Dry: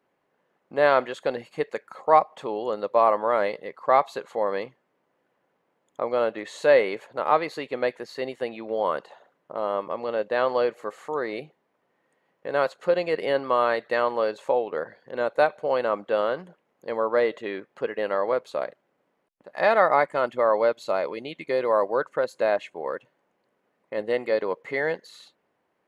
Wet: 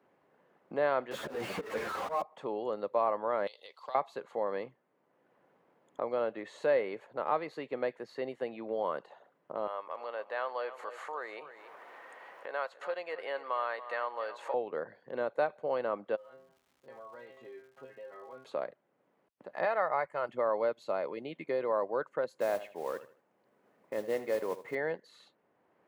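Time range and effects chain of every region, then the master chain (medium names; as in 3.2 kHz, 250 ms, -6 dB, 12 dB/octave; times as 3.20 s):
1.11–2.22 s: jump at every zero crossing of -20.5 dBFS + slow attack 169 ms + three-phase chorus
3.47–3.95 s: high-pass 840 Hz + resonant high shelf 2.5 kHz +13.5 dB, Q 3 + compression 12:1, threshold -33 dBFS
9.67–14.54 s: upward compressor, threshold -27 dBFS + high-pass 820 Hz + feedback delay 282 ms, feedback 30%, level -14.5 dB
16.15–18.43 s: inharmonic resonator 130 Hz, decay 0.34 s, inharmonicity 0.002 + compression 2:1, threshold -53 dBFS + crackle 370 per s -53 dBFS
19.65–20.29 s: peaking EQ 260 Hz -12.5 dB 1.1 oct + band-stop 3.5 kHz, Q 6.6
22.37–24.75 s: feedback delay 78 ms, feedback 27%, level -15 dB + modulation noise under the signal 14 dB
whole clip: high-pass 55 Hz; treble shelf 2.9 kHz -10 dB; three bands compressed up and down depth 40%; trim -7.5 dB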